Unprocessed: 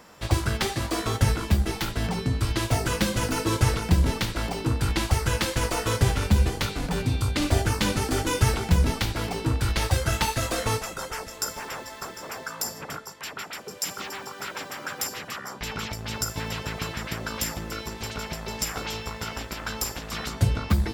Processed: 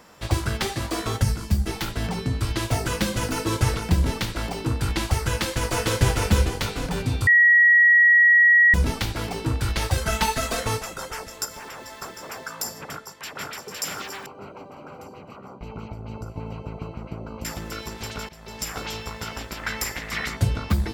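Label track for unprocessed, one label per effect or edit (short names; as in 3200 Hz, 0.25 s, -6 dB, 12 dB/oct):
1.230000	1.670000	spectral gain 250–4200 Hz -7 dB
5.270000	6.000000	echo throw 0.45 s, feedback 40%, level -4 dB
7.270000	8.740000	bleep 1910 Hz -11.5 dBFS
9.970000	10.610000	comb 4.6 ms
11.450000	11.890000	compressor, threshold -34 dBFS
12.840000	13.470000	echo throw 0.51 s, feedback 75%, level -1.5 dB
14.260000	17.450000	running mean over 25 samples
18.290000	18.760000	fade in, from -17.5 dB
19.630000	20.370000	bell 2000 Hz +13.5 dB 0.5 oct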